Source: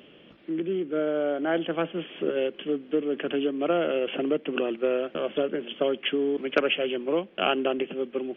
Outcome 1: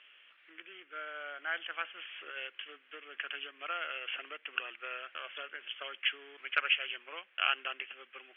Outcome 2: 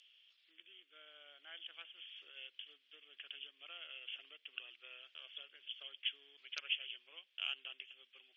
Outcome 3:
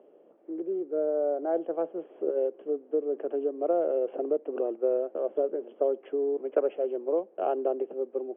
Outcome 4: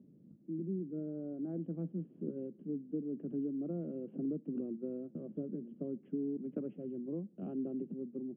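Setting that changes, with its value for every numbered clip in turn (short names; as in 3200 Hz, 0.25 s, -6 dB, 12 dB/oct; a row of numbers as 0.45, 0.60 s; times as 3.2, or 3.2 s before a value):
Butterworth band-pass, frequency: 2000, 5800, 550, 160 Hz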